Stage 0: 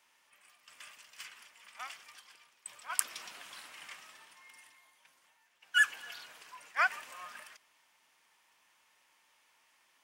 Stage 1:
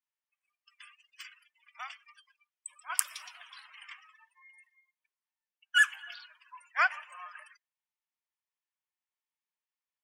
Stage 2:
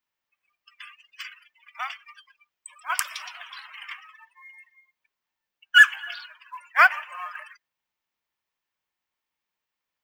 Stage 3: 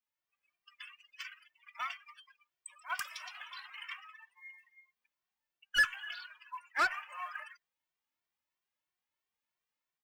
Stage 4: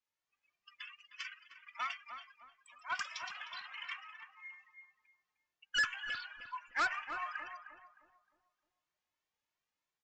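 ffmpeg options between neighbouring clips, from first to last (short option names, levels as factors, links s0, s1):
-af "highpass=580,afftdn=nr=33:nf=-50,volume=1.33"
-filter_complex "[0:a]equalizer=f=9900:t=o:w=1.1:g=-13,asplit=2[s0][s1];[s1]acrusher=bits=4:mode=log:mix=0:aa=0.000001,volume=0.299[s2];[s0][s2]amix=inputs=2:normalize=0,volume=2.66"
-filter_complex "[0:a]dynaudnorm=f=100:g=5:m=1.58,asoftclip=type=tanh:threshold=0.2,asplit=2[s0][s1];[s1]adelay=2.1,afreqshift=3[s2];[s0][s2]amix=inputs=2:normalize=1,volume=0.447"
-filter_complex "[0:a]aresample=16000,asoftclip=type=tanh:threshold=0.0422,aresample=44100,asplit=2[s0][s1];[s1]adelay=308,lowpass=f=870:p=1,volume=0.562,asplit=2[s2][s3];[s3]adelay=308,lowpass=f=870:p=1,volume=0.46,asplit=2[s4][s5];[s5]adelay=308,lowpass=f=870:p=1,volume=0.46,asplit=2[s6][s7];[s7]adelay=308,lowpass=f=870:p=1,volume=0.46,asplit=2[s8][s9];[s9]adelay=308,lowpass=f=870:p=1,volume=0.46,asplit=2[s10][s11];[s11]adelay=308,lowpass=f=870:p=1,volume=0.46[s12];[s0][s2][s4][s6][s8][s10][s12]amix=inputs=7:normalize=0,volume=1.12"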